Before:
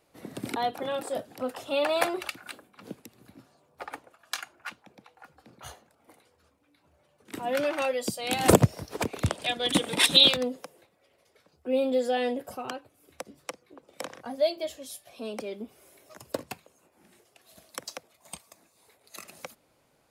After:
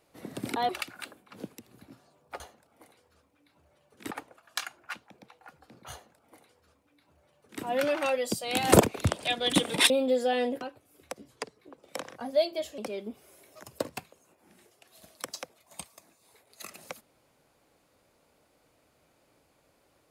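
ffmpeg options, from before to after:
-filter_complex "[0:a]asplit=10[a][b][c][d][e][f][g][h][i][j];[a]atrim=end=0.692[k];[b]atrim=start=2.158:end=3.872[l];[c]atrim=start=5.678:end=7.392[m];[d]atrim=start=3.868:end=8.572[n];[e]atrim=start=8.998:end=10.092[o];[f]atrim=start=11.738:end=12.452[p];[g]atrim=start=12.698:end=13.374[q];[h]atrim=start=13.37:end=13.64,asetpts=PTS-STARTPTS,asetrate=38367,aresample=44100,atrim=end_sample=13686,asetpts=PTS-STARTPTS[r];[i]atrim=start=13.636:end=14.832[s];[j]atrim=start=15.318[t];[k][l]acrossfade=d=0.004:c1=hsin:c2=hsin[u];[u][m]acrossfade=d=0.004:c1=hsin:c2=hsin[v];[v][n]acrossfade=d=0.004:c1=hsin:c2=hsin[w];[w][o]acrossfade=d=0.004:c1=hsin:c2=hsin[x];[x][p]acrossfade=d=0.004:c1=hsin:c2=hsin[y];[y][q]acrossfade=d=0.004:c1=hsin:c2=hsin[z];[z][r]acrossfade=d=0.004:c1=hsin:c2=hsin[aa];[aa][s]acrossfade=d=0.004:c1=hsin:c2=hsin[ab];[ab][t]acrossfade=d=0.004:c1=hsin:c2=hsin"

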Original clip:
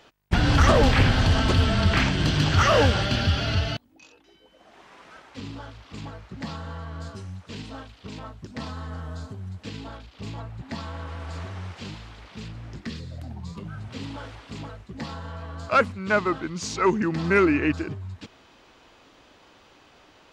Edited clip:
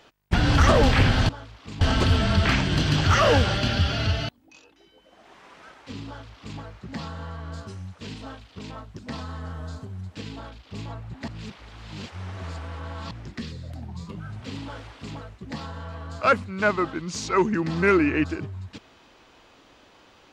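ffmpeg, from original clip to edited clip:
-filter_complex "[0:a]asplit=5[a][b][c][d][e];[a]atrim=end=1.292[f];[b]atrim=start=5.548:end=6.072[g];[c]atrim=start=1.288:end=10.762[h];[d]atrim=start=10.758:end=12.592,asetpts=PTS-STARTPTS,areverse[i];[e]atrim=start=12.588[j];[f][g]acrossfade=d=0.004:c1=hsin:c2=hsin[k];[k][h]acrossfade=d=0.004:c1=hsin:c2=hsin[l];[l][i]acrossfade=d=0.004:c1=hsin:c2=hsin[m];[m][j]acrossfade=d=0.004:c1=hsin:c2=hsin"

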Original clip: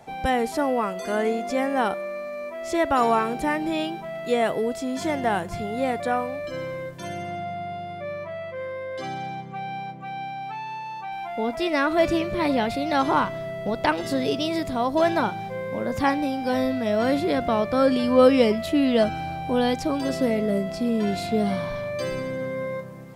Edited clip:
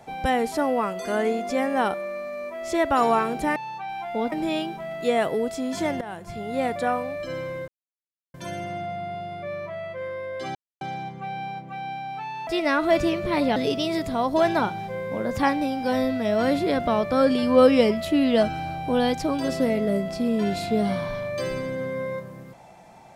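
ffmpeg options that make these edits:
-filter_complex "[0:a]asplit=8[a][b][c][d][e][f][g][h];[a]atrim=end=3.562[i];[b]atrim=start=10.788:end=11.552[j];[c]atrim=start=3.558:end=5.25,asetpts=PTS-STARTPTS,afade=t=out:st=1.688:d=0.004:c=hsin:silence=0.149624[k];[d]atrim=start=5.25:end=6.92,asetpts=PTS-STARTPTS,afade=t=in:d=0.64:silence=0.149624,afade=t=out:st=1.666:d=0.004:c=hsin,apad=pad_dur=0.66[l];[e]atrim=start=6.92:end=9.13,asetpts=PTS-STARTPTS,afade=t=in:d=0.004:c=hsin,afade=t=out:st=2.206:d=0.004:c=hsin,apad=pad_dur=0.26[m];[f]atrim=start=9.13:end=10.792,asetpts=PTS-STARTPTS,afade=t=in:d=0.004:c=hsin[n];[g]atrim=start=11.548:end=12.642[o];[h]atrim=start=14.168[p];[i][j]acrossfade=d=0.004:c1=hsin:c2=hsin[q];[k][l][m][n]concat=n=4:v=0:a=1[r];[q][r]acrossfade=d=0.004:c1=hsin:c2=hsin[s];[s][o]acrossfade=d=0.004:c1=hsin:c2=hsin[t];[t][p]acrossfade=d=0.004:c1=hsin:c2=hsin"

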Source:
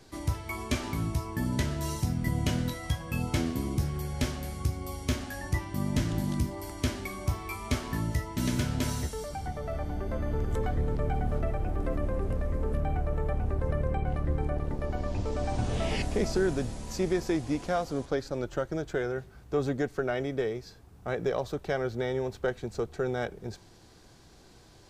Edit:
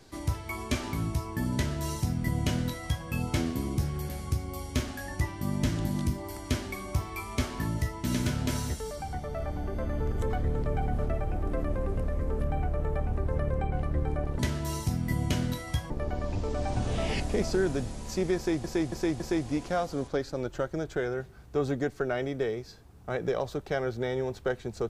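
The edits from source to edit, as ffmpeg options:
-filter_complex "[0:a]asplit=7[a][b][c][d][e][f][g];[a]atrim=end=4.092[h];[b]atrim=start=4.418:end=14.722[i];[c]atrim=start=1.548:end=3.062[j];[d]atrim=start=14.718:end=17.462[k];[e]atrim=start=17.178:end=17.462[l];[f]atrim=start=17.178:end=17.462[m];[g]atrim=start=17.178[n];[h][i]acrossfade=d=0.004:c1=hsin:c2=hsin[o];[o][j]acrossfade=d=0.004:c1=hsin:c2=hsin[p];[p][k]acrossfade=d=0.004:c1=hsin:c2=hsin[q];[q][l]acrossfade=d=0.004:c1=hsin:c2=hsin[r];[r][m]acrossfade=d=0.004:c1=hsin:c2=hsin[s];[s][n]acrossfade=d=0.004:c1=hsin:c2=hsin"

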